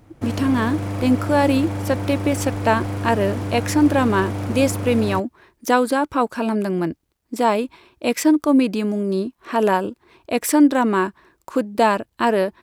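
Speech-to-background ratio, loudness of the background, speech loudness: 6.5 dB, −27.0 LKFS, −20.5 LKFS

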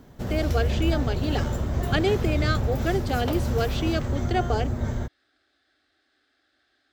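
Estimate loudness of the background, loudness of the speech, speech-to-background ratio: −27.5 LKFS, −28.5 LKFS, −1.0 dB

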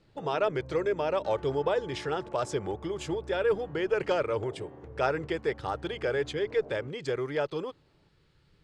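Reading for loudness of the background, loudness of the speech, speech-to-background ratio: −47.0 LKFS, −31.0 LKFS, 16.0 dB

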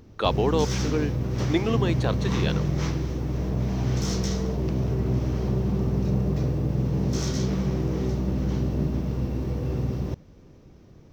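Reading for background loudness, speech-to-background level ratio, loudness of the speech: −26.5 LKFS, −1.5 dB, −28.0 LKFS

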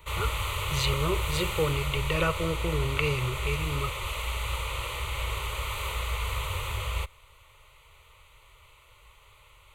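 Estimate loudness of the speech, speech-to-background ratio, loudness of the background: −30.5 LKFS, 1.5 dB, −32.0 LKFS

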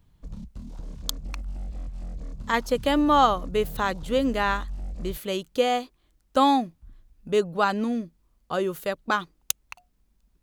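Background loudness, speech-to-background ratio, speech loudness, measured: −39.5 LKFS, 14.0 dB, −25.5 LKFS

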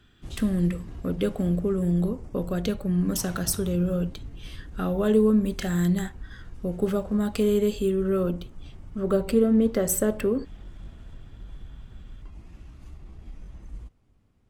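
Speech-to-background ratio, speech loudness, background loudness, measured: 19.0 dB, −25.5 LKFS, −44.5 LKFS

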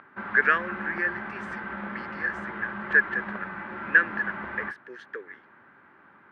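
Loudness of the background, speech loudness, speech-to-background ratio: −36.0 LKFS, −26.0 LKFS, 10.0 dB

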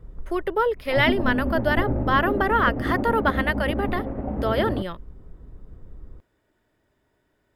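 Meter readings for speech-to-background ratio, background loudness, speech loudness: 3.5 dB, −27.5 LKFS, −24.0 LKFS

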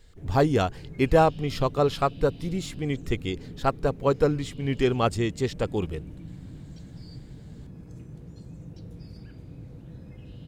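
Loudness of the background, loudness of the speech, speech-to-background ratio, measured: −43.5 LKFS, −26.0 LKFS, 17.5 dB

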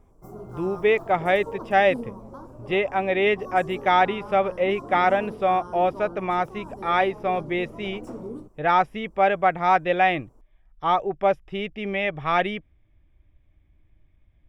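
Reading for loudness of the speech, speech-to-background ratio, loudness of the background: −23.5 LKFS, 15.5 dB, −39.0 LKFS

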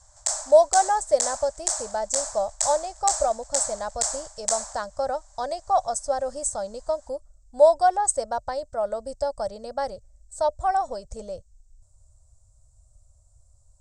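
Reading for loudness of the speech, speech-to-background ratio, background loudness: −25.0 LKFS, 3.0 dB, −28.0 LKFS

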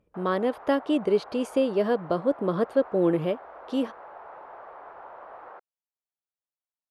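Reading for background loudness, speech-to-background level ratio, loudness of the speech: −45.0 LKFS, 18.5 dB, −26.5 LKFS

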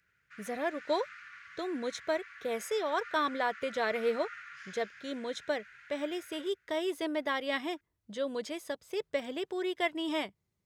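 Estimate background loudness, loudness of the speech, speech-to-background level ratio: −48.5 LKFS, −35.0 LKFS, 13.5 dB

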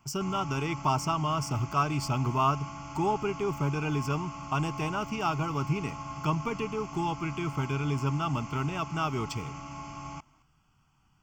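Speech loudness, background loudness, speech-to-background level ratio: −31.0 LKFS, −41.0 LKFS, 10.0 dB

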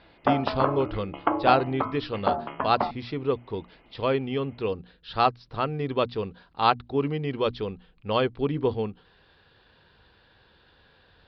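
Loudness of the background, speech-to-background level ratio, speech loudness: −29.5 LKFS, 1.5 dB, −28.0 LKFS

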